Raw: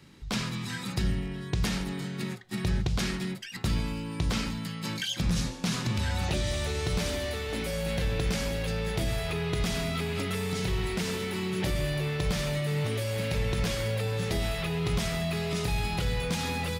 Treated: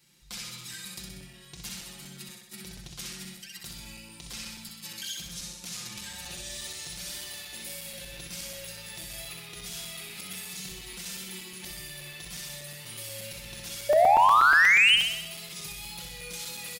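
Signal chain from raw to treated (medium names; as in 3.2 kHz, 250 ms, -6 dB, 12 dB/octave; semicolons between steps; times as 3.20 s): wow and flutter 24 cents; comb 5.7 ms, depth 76%; peak limiter -20.5 dBFS, peak gain reduction 5 dB; pre-emphasis filter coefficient 0.9; painted sound rise, 13.89–14.96 s, 570–3200 Hz -18 dBFS; saturation -15.5 dBFS, distortion -21 dB; flutter echo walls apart 10.9 m, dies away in 0.82 s; crackling interface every 0.12 s, samples 128, zero, from 0.61 s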